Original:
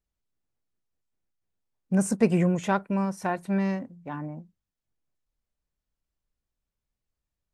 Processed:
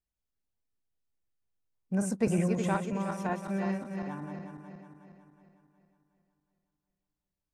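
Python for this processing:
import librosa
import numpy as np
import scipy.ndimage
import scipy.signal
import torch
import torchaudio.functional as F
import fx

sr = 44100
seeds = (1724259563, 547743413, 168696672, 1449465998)

y = fx.reverse_delay_fb(x, sr, ms=183, feedback_pct=68, wet_db=-6.0)
y = fx.band_squash(y, sr, depth_pct=70, at=(2.27, 2.69))
y = y * 10.0 ** (-6.5 / 20.0)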